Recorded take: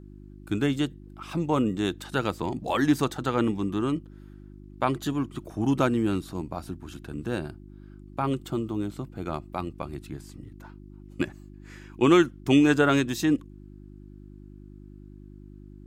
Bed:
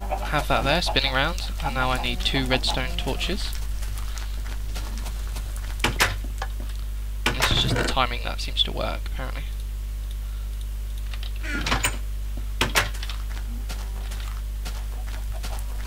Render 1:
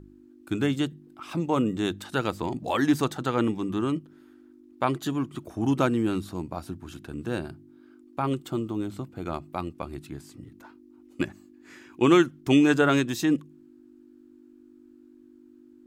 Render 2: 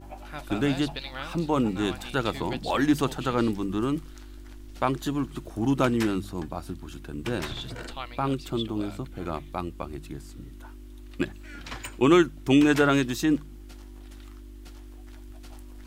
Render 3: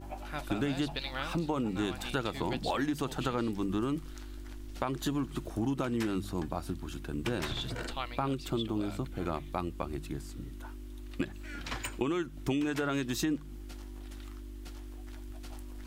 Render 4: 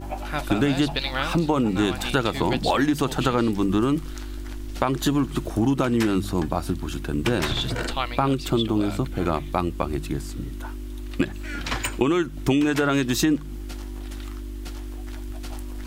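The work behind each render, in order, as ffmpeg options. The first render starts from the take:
-af "bandreject=f=50:t=h:w=4,bandreject=f=100:t=h:w=4,bandreject=f=150:t=h:w=4,bandreject=f=200:t=h:w=4"
-filter_complex "[1:a]volume=-15dB[a];[0:a][a]amix=inputs=2:normalize=0"
-af "alimiter=limit=-15dB:level=0:latency=1:release=189,acompressor=threshold=-28dB:ratio=6"
-af "volume=10.5dB"

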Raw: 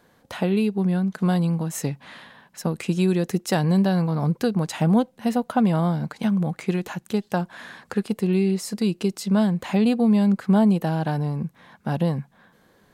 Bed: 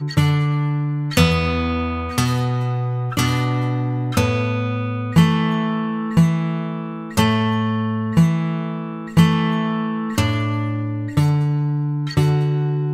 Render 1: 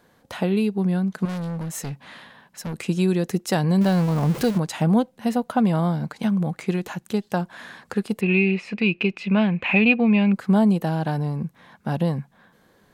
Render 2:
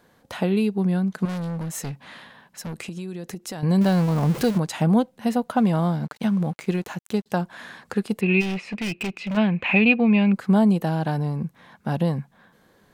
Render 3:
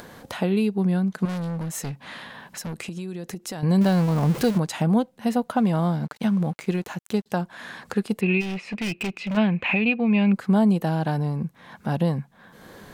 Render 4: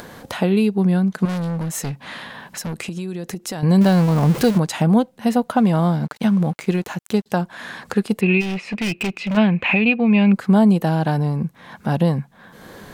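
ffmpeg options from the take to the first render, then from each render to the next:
-filter_complex "[0:a]asettb=1/sr,asplit=3[a][b][c];[a]atrim=end=1.254[d];[b]atrim=start=1.25:end=2.74,asetpts=PTS-STARTPTS,afade=t=in:d=0.004:c=qsin,afade=t=out:st=1.486:d=0.004:c=qsin,asoftclip=type=hard:threshold=-27dB[e];[c]atrim=start=2.736[f];[d][e]acrossfade=d=0.004:c1=hsin:c2=qsin[g];[g][f]acrossfade=d=0.004:c1=qsin:c2=hsin,asettb=1/sr,asplit=3[h][i][j];[h]atrim=end=3.814[k];[i]atrim=start=3.81:end=4.58,asetpts=PTS-STARTPTS,afade=t=in:d=0.004:c=qsin,afade=t=out:st=0.766:d=0.004:c=qsin,aeval=exprs='val(0)+0.5*0.0447*sgn(val(0))':c=same[l];[j]atrim=start=4.576[m];[k][l]acrossfade=d=0.004:c1=hsin:c2=qsin[n];[n][m]acrossfade=d=0.004:c1=qsin:c2=hsin,asettb=1/sr,asplit=3[o][p][q];[o]atrim=end=8.214[r];[p]atrim=start=8.21:end=10.33,asetpts=PTS-STARTPTS,afade=t=in:d=0.004:c=qsin,afade=t=out:st=2.116:d=0.004:c=qsin,lowpass=f=2.5k:t=q:w=14[s];[q]atrim=start=10.326[t];[r][s]acrossfade=d=0.004:c1=hsin:c2=qsin[u];[u][t]acrossfade=d=0.004:c1=qsin:c2=hsin"
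-filter_complex "[0:a]asettb=1/sr,asplit=3[a][b][c];[a]atrim=end=1.914[d];[b]atrim=start=1.91:end=3.63,asetpts=PTS-STARTPTS,afade=t=in:d=0.004:c=qsin,afade=t=out:st=1.716:d=0.004:c=qsin,acompressor=threshold=-30dB:ratio=6:attack=3.2:release=140:knee=1:detection=peak[e];[c]atrim=start=3.626[f];[d][e]acrossfade=d=0.004:c1=hsin:c2=qsin[g];[g][f]acrossfade=d=0.004:c1=qsin:c2=hsin,asettb=1/sr,asplit=3[h][i][j];[h]atrim=end=5.564[k];[i]atrim=start=5.56:end=7.26,asetpts=PTS-STARTPTS,afade=t=in:d=0.004:c=qsin,afade=t=out:st=1.696:d=0.004:c=qsin,aeval=exprs='sgn(val(0))*max(abs(val(0))-0.00398,0)':c=same[l];[j]atrim=start=7.256[m];[k][l]acrossfade=d=0.004:c1=hsin:c2=qsin[n];[n][m]acrossfade=d=0.004:c1=qsin:c2=hsin,asplit=3[o][p][q];[o]afade=t=out:st=8.4:d=0.02[r];[p]asoftclip=type=hard:threshold=-24.5dB,afade=t=in:st=8.4:d=0.02,afade=t=out:st=9.36:d=0.02[s];[q]afade=t=in:st=9.36:d=0.02[t];[r][s][t]amix=inputs=3:normalize=0"
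-af "alimiter=limit=-11.5dB:level=0:latency=1:release=408,acompressor=mode=upward:threshold=-31dB:ratio=2.5"
-af "volume=5dB"

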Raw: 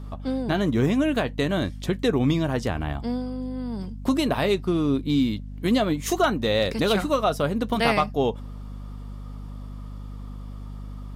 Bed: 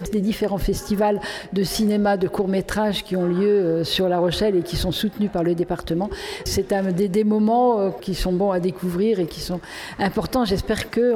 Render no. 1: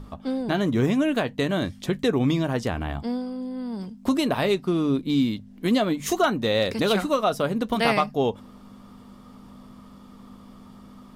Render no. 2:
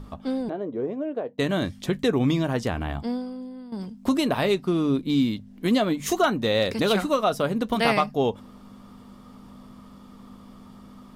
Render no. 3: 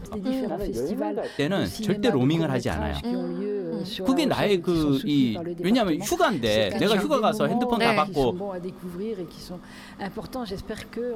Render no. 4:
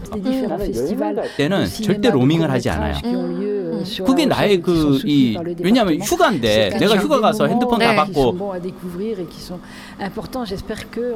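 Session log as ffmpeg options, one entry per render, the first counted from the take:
-af "bandreject=f=50:t=h:w=6,bandreject=f=100:t=h:w=6,bandreject=f=150:t=h:w=6"
-filter_complex "[0:a]asplit=3[a][b][c];[a]afade=t=out:st=0.48:d=0.02[d];[b]bandpass=f=480:t=q:w=2.4,afade=t=in:st=0.48:d=0.02,afade=t=out:st=1.38:d=0.02[e];[c]afade=t=in:st=1.38:d=0.02[f];[d][e][f]amix=inputs=3:normalize=0,asplit=2[g][h];[g]atrim=end=3.72,asetpts=PTS-STARTPTS,afade=t=out:st=3.09:d=0.63:silence=0.251189[i];[h]atrim=start=3.72,asetpts=PTS-STARTPTS,afade=t=in:d=0.004:c=hsin:silence=0.251189[j];[i][j]concat=n=2:v=0:a=1"
-filter_complex "[1:a]volume=-11.5dB[a];[0:a][a]amix=inputs=2:normalize=0"
-af "volume=7dB,alimiter=limit=-2dB:level=0:latency=1"

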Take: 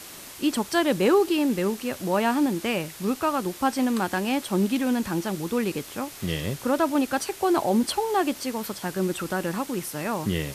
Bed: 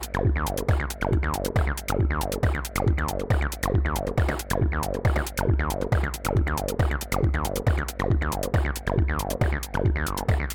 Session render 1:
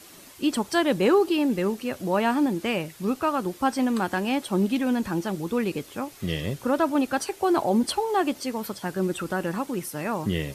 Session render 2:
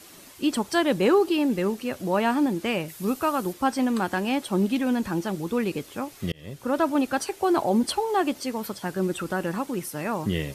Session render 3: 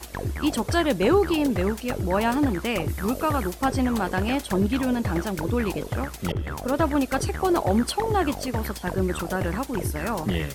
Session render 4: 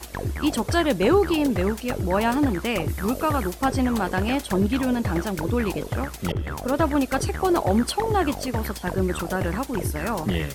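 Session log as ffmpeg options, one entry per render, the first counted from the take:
-af "afftdn=nr=8:nf=-42"
-filter_complex "[0:a]asettb=1/sr,asplit=3[a][b][c];[a]atrim=end=2.884[d];[b]atrim=start=2.88:end=3.53,asetpts=PTS-STARTPTS,afade=t=in:d=0.004:c=qsin,afade=t=out:st=0.646:d=0.004:c=qsin,highshelf=f=8.5k:g=11[e];[c]atrim=start=3.526[f];[d][e]acrossfade=d=0.004:c1=hsin:c2=qsin[g];[g][f]acrossfade=d=0.004:c1=qsin:c2=hsin,asplit=2[h][i];[h]atrim=end=6.32,asetpts=PTS-STARTPTS,afade=t=out:st=6.316:d=0.004:c=hsin[j];[i]atrim=start=6.32,asetpts=PTS-STARTPTS,afade=t=in:d=0.48[k];[j][k]concat=n=2:v=0:a=1"
-filter_complex "[1:a]volume=-6.5dB[a];[0:a][a]amix=inputs=2:normalize=0"
-af "volume=1dB"

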